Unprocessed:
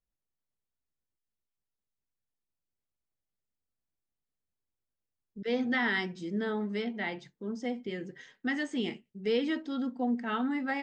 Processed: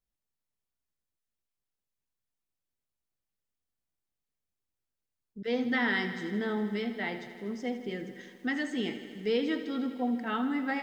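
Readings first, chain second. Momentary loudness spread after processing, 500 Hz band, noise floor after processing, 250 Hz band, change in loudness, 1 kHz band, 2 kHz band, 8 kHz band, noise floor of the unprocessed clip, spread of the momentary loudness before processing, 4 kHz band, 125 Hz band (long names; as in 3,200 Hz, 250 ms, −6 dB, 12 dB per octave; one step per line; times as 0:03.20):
11 LU, +0.5 dB, below −85 dBFS, +0.5 dB, +0.5 dB, +0.5 dB, +0.5 dB, can't be measured, below −85 dBFS, 11 LU, +0.5 dB, +0.5 dB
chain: feedback echo at a low word length 80 ms, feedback 80%, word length 10 bits, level −13 dB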